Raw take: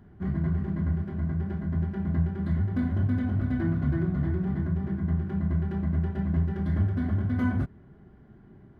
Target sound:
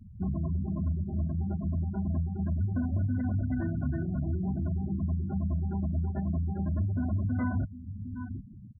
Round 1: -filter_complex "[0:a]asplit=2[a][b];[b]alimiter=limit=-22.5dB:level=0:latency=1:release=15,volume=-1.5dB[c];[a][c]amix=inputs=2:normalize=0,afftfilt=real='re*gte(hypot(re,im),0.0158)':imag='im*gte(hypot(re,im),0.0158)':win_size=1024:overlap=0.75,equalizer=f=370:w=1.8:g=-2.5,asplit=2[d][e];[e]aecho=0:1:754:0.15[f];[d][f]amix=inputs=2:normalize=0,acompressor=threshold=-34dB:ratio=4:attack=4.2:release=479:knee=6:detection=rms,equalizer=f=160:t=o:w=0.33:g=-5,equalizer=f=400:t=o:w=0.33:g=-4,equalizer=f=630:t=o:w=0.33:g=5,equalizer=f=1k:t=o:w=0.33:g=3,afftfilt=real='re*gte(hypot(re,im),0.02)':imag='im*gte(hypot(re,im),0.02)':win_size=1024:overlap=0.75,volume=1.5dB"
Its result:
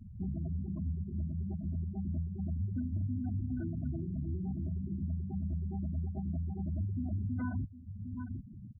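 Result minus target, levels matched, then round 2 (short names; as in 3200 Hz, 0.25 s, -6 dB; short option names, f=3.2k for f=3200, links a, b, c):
compressor: peak gain reduction +5.5 dB
-filter_complex "[0:a]asplit=2[a][b];[b]alimiter=limit=-22.5dB:level=0:latency=1:release=15,volume=-1.5dB[c];[a][c]amix=inputs=2:normalize=0,afftfilt=real='re*gte(hypot(re,im),0.0158)':imag='im*gte(hypot(re,im),0.0158)':win_size=1024:overlap=0.75,equalizer=f=370:w=1.8:g=-2.5,asplit=2[d][e];[e]aecho=0:1:754:0.15[f];[d][f]amix=inputs=2:normalize=0,acompressor=threshold=-26.5dB:ratio=4:attack=4.2:release=479:knee=6:detection=rms,equalizer=f=160:t=o:w=0.33:g=-5,equalizer=f=400:t=o:w=0.33:g=-4,equalizer=f=630:t=o:w=0.33:g=5,equalizer=f=1k:t=o:w=0.33:g=3,afftfilt=real='re*gte(hypot(re,im),0.02)':imag='im*gte(hypot(re,im),0.02)':win_size=1024:overlap=0.75,volume=1.5dB"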